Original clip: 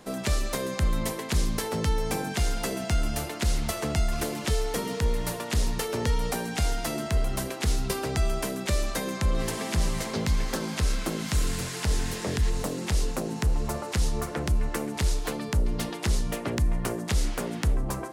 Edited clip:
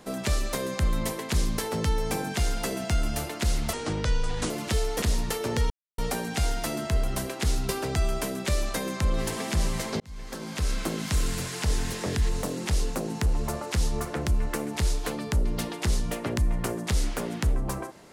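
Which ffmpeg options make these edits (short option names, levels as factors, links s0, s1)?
-filter_complex "[0:a]asplit=6[s0][s1][s2][s3][s4][s5];[s0]atrim=end=3.734[s6];[s1]atrim=start=3.73:end=4.27,asetpts=PTS-STARTPTS,asetrate=30870,aresample=44100[s7];[s2]atrim=start=4.266:end=4.792[s8];[s3]atrim=start=5.508:end=6.19,asetpts=PTS-STARTPTS,afade=t=out:st=0.678:d=0.004:c=hsin,apad=pad_dur=0.28[s9];[s4]atrim=start=6.19:end=10.21,asetpts=PTS-STARTPTS,afade=t=in:d=0.004:c=hsin,afade=t=out:st=4.016:d=0.004:c=hsin[s10];[s5]atrim=start=10.21,asetpts=PTS-STARTPTS,afade=t=in:d=0.8[s11];[s6][s7]acrossfade=d=0.004:c1=hsin:c2=hsin[s12];[s12][s8]acrossfade=d=0.004:c1=hsin:c2=hsin[s13];[s9][s10][s11]concat=n=3:v=0:a=1[s14];[s13][s14]acrossfade=d=0.004:c1=hsin:c2=hsin"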